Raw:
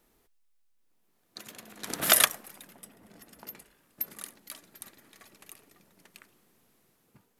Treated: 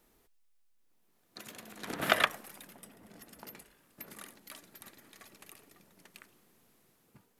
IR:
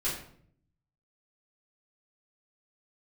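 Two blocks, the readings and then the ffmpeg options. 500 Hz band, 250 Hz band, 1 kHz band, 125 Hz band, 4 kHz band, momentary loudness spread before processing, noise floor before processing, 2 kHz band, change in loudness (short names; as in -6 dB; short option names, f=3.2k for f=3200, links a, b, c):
0.0 dB, 0.0 dB, 0.0 dB, 0.0 dB, -6.5 dB, 23 LU, -71 dBFS, -1.0 dB, -8.5 dB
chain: -filter_complex "[0:a]acrossover=split=3200[a][b];[b]acompressor=threshold=-43dB:ratio=4:attack=1:release=60[c];[a][c]amix=inputs=2:normalize=0"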